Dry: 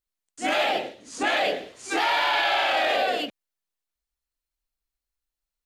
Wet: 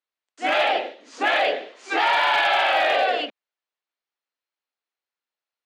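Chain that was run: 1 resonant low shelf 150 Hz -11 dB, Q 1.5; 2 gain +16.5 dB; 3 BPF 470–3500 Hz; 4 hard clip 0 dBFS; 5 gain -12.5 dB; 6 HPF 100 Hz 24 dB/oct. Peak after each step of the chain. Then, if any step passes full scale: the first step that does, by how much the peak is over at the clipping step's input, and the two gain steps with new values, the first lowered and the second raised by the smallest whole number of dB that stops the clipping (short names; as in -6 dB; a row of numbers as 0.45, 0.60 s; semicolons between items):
-13.5, +3.0, +4.0, 0.0, -12.5, -10.5 dBFS; step 2, 4.0 dB; step 2 +12.5 dB, step 5 -8.5 dB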